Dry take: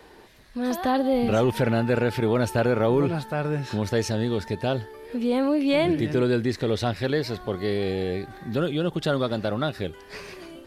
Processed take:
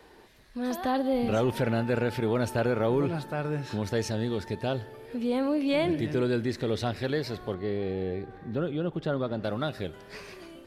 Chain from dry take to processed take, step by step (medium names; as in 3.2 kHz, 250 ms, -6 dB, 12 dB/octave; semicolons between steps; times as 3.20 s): 7.54–9.44 s: low-pass 1.4 kHz 6 dB/octave; spring tank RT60 2.7 s, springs 53 ms, chirp 60 ms, DRR 19 dB; trim -4.5 dB